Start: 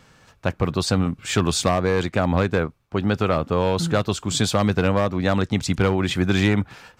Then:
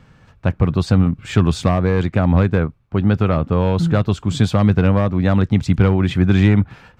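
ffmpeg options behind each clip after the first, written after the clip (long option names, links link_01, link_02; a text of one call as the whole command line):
ffmpeg -i in.wav -af "bass=frequency=250:gain=9,treble=frequency=4000:gain=-10" out.wav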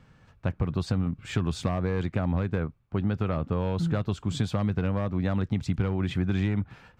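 ffmpeg -i in.wav -af "acompressor=threshold=-14dB:ratio=6,volume=-8dB" out.wav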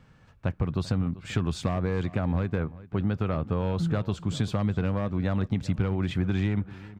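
ffmpeg -i in.wav -filter_complex "[0:a]asplit=2[link_01][link_02];[link_02]adelay=390,lowpass=frequency=3500:poles=1,volume=-18dB,asplit=2[link_03][link_04];[link_04]adelay=390,lowpass=frequency=3500:poles=1,volume=0.28[link_05];[link_01][link_03][link_05]amix=inputs=3:normalize=0" out.wav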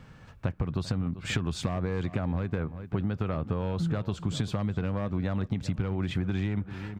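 ffmpeg -i in.wav -af "acompressor=threshold=-32dB:ratio=6,volume=6dB" out.wav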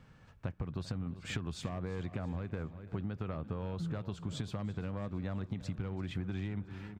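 ffmpeg -i in.wav -af "aecho=1:1:337|674|1011|1348:0.112|0.0583|0.0303|0.0158,volume=-8.5dB" out.wav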